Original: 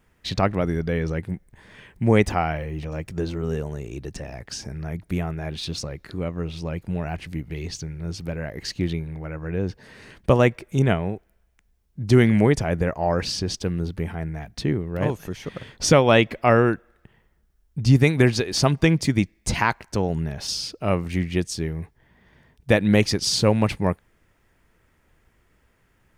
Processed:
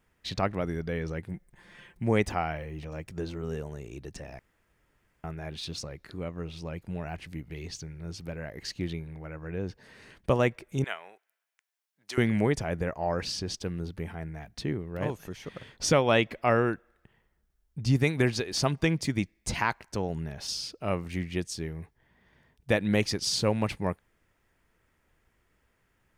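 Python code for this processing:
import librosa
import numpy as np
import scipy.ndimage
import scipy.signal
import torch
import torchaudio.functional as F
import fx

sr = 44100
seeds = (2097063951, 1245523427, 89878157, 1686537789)

y = fx.comb(x, sr, ms=5.7, depth=0.67, at=(1.34, 2.02))
y = fx.highpass(y, sr, hz=1100.0, slope=12, at=(10.84, 12.18))
y = fx.edit(y, sr, fx.room_tone_fill(start_s=4.39, length_s=0.85), tone=tone)
y = fx.low_shelf(y, sr, hz=370.0, db=-3.0)
y = y * 10.0 ** (-6.0 / 20.0)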